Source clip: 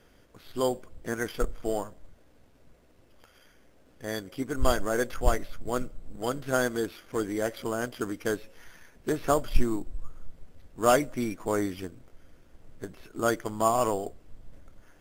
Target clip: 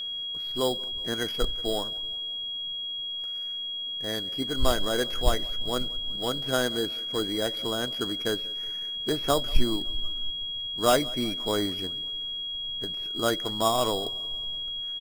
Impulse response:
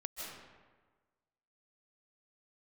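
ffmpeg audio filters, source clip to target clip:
-filter_complex "[0:a]aecho=1:1:185|370|555|740:0.0708|0.0396|0.0222|0.0124,acrossover=split=1100[s0][s1];[s0]acrusher=samples=10:mix=1:aa=0.000001[s2];[s2][s1]amix=inputs=2:normalize=0,aeval=exprs='val(0)+0.0282*sin(2*PI*3300*n/s)':c=same"

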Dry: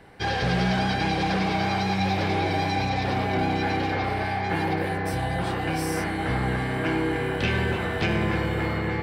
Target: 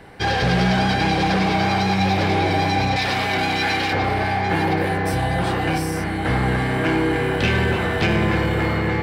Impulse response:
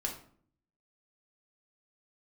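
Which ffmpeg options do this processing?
-filter_complex "[0:a]asettb=1/sr,asplit=3[s0][s1][s2];[s0]atrim=end=2.964[s3];[s1]atrim=start=2.96:end=3.93,asetpts=PTS-STARTPTS,afade=t=in:d=0.004:c=qsin,afade=t=out:st=0.966:d=0.004:c=qsin,tiltshelf=f=1100:g=-7[s4];[s2]atrim=start=3.926[s5];[s3][s4]acrossfade=d=0.004:c1=hsin:c2=qsin[s6];[s6][s5]acrossfade=d=0.004:c1=qsin:c2=hsin,asettb=1/sr,asplit=3[s7][s8][s9];[s7]atrim=end=5.774[s10];[s8]atrim=start=5.77:end=6.25,asetpts=PTS-STARTPTS,afade=t=in:d=0.004:c=qsin,afade=t=out:st=0.476:d=0.004:c=qsin,acrossover=split=220[s11][s12];[s12]acompressor=threshold=0.0316:ratio=6[s13];[s11][s13]amix=inputs=2:normalize=0[s14];[s9]atrim=start=6.246[s15];[s10][s14]acrossfade=d=0.004:c1=hsin:c2=qsin[s16];[s16][s15]acrossfade=d=0.004:c1=qsin:c2=hsin,asplit=2[s17][s18];[s18]asoftclip=type=hard:threshold=0.0398,volume=0.376[s19];[s17][s19]amix=inputs=2:normalize=0,volume=1.58"

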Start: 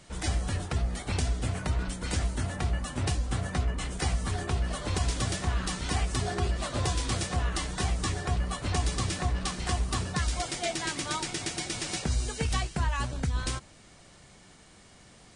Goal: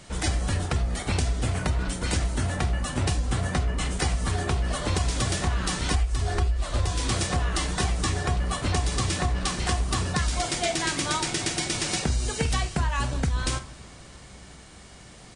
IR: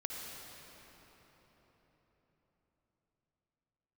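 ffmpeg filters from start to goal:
-filter_complex "[0:a]asplit=2[s0][s1];[s1]adelay=46,volume=0.251[s2];[s0][s2]amix=inputs=2:normalize=0,asplit=2[s3][s4];[1:a]atrim=start_sample=2205[s5];[s4][s5]afir=irnorm=-1:irlink=0,volume=0.112[s6];[s3][s6]amix=inputs=2:normalize=0,asplit=3[s7][s8][s9];[s7]afade=t=out:st=5.93:d=0.02[s10];[s8]asubboost=boost=8:cutoff=58,afade=t=in:st=5.93:d=0.02,afade=t=out:st=6.89:d=0.02[s11];[s9]afade=t=in:st=6.89:d=0.02[s12];[s10][s11][s12]amix=inputs=3:normalize=0,acompressor=threshold=0.0501:ratio=12,volume=1.88"

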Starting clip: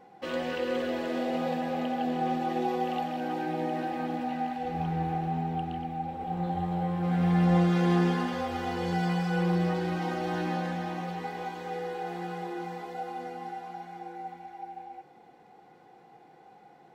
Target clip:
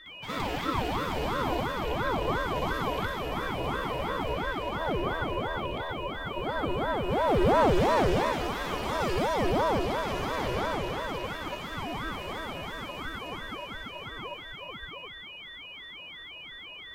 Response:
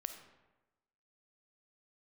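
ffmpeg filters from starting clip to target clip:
-filter_complex "[0:a]aeval=exprs='val(0)+0.00794*sin(2*PI*2700*n/s)':c=same,crystalizer=i=2:c=0,asplit=2[s0][s1];[1:a]atrim=start_sample=2205,lowshelf=f=400:g=4,adelay=61[s2];[s1][s2]afir=irnorm=-1:irlink=0,volume=2.66[s3];[s0][s3]amix=inputs=2:normalize=0,aeval=exprs='val(0)*sin(2*PI*500*n/s+500*0.65/2.9*sin(2*PI*2.9*n/s))':c=same,volume=0.501"

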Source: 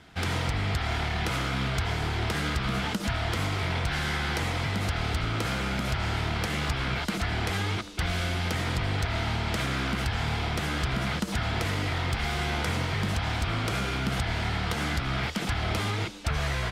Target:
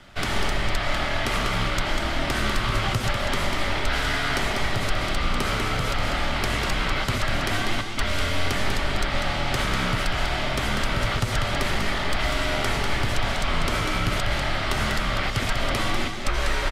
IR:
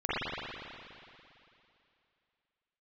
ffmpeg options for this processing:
-af "aecho=1:1:195:0.501,afreqshift=-89,volume=1.68"

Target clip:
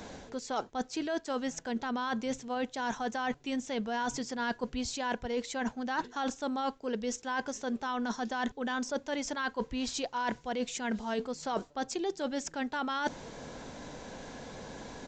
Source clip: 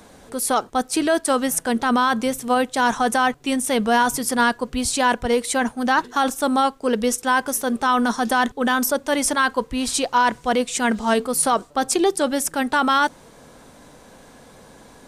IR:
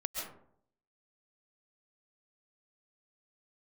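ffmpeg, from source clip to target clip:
-af "equalizer=f=1200:t=o:w=0.2:g=-7,areverse,acompressor=threshold=0.0251:ratio=16,areverse,aresample=16000,aresample=44100,volume=1.26"

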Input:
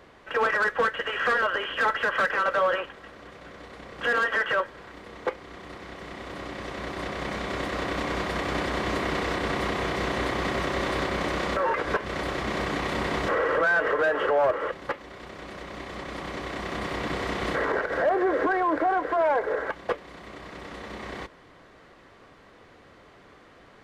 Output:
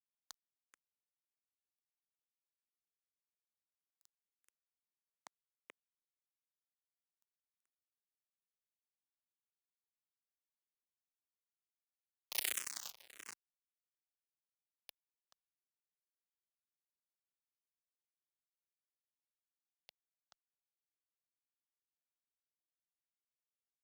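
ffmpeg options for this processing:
-filter_complex "[0:a]acompressor=threshold=0.0141:ratio=10,asettb=1/sr,asplit=3[s0][s1][s2];[s0]atrim=end=12.314[s3];[s1]atrim=start=12.31:end=12.91,asetpts=PTS-STARTPTS,afade=t=in:d=0.004:c=qsin,afade=t=out:st=0.596:d=0.004:c=qsin,equalizer=f=3200:w=0.36:g=11[s4];[s2]atrim=start=12.906[s5];[s3][s4]acrossfade=d=0.004:c1=hsin:c2=qsin[s6];[s6][s5]acrossfade=d=0.004:c1=qsin:c2=hsin,acrusher=bits=3:mix=0:aa=0.5,aemphasis=mode=production:type=riaa,asplit=2[s7][s8];[s8]adelay=431.5,volume=0.447,highshelf=f=4000:g=-9.71[s9];[s7][s9]amix=inputs=2:normalize=0,tremolo=f=0.89:d=0.76,asplit=2[s10][s11];[s11]afreqshift=-1.6[s12];[s10][s12]amix=inputs=2:normalize=1,volume=3.98"

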